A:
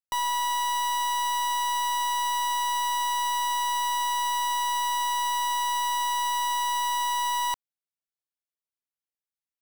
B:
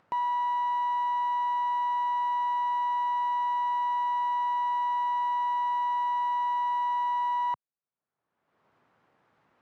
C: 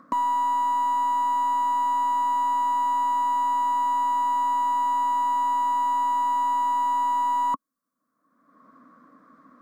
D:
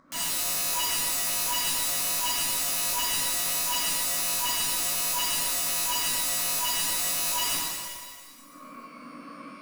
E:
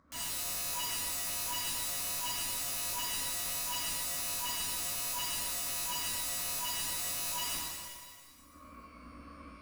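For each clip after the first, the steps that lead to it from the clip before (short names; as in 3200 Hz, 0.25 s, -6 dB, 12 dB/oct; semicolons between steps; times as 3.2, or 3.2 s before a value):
Chebyshev band-pass 120–1200 Hz, order 2; upward compressor, threshold -39 dBFS
overloaded stage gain 28.5 dB; fixed phaser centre 570 Hz, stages 8; small resonant body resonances 270/1100/2800 Hz, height 18 dB, ringing for 30 ms; gain +7.5 dB
pump 82 bpm, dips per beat 1, -22 dB, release 0.316 s; wrapped overs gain 32.5 dB; shimmer reverb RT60 1.8 s, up +12 st, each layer -8 dB, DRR -8 dB; gain +1.5 dB
octaver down 2 oct, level +1 dB; gain -8.5 dB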